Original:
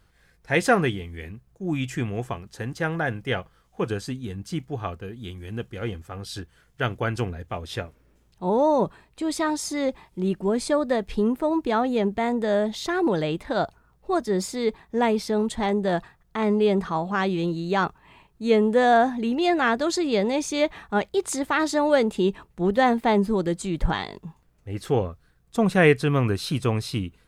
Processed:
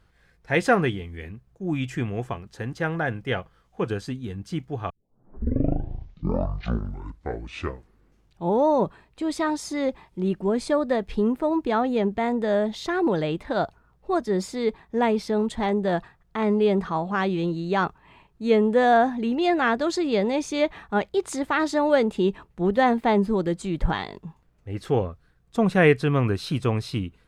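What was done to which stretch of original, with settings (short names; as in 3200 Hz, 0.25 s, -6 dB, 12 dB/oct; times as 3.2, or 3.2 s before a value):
4.9 tape start 3.74 s
whole clip: high shelf 6100 Hz -9.5 dB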